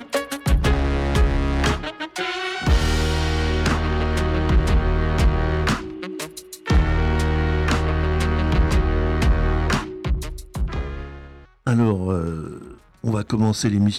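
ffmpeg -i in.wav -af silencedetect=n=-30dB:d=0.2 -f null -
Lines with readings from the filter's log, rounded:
silence_start: 11.23
silence_end: 11.67 | silence_duration: 0.43
silence_start: 12.71
silence_end: 13.04 | silence_duration: 0.33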